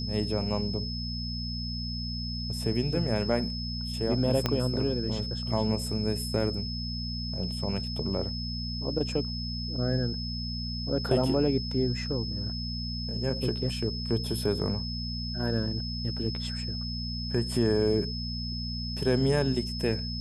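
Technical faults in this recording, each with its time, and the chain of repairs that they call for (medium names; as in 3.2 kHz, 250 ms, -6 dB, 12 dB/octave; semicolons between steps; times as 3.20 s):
hum 60 Hz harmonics 4 -35 dBFS
whine 5.2 kHz -36 dBFS
4.46 s: pop -11 dBFS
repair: de-click; band-stop 5.2 kHz, Q 30; de-hum 60 Hz, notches 4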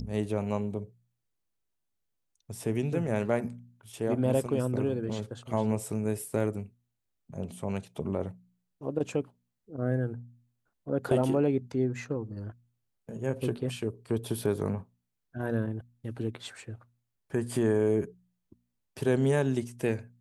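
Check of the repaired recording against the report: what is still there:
4.46 s: pop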